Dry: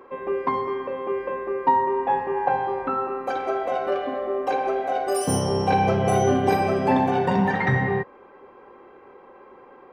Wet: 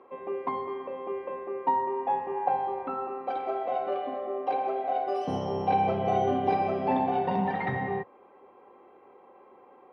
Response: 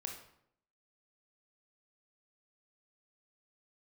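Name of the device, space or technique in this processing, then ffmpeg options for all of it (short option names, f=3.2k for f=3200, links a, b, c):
guitar cabinet: -af "highpass=94,equalizer=f=130:t=q:w=4:g=-5,equalizer=f=730:t=q:w=4:g=6,equalizer=f=1.6k:t=q:w=4:g=-7,lowpass=f=4k:w=0.5412,lowpass=f=4k:w=1.3066,volume=-7.5dB"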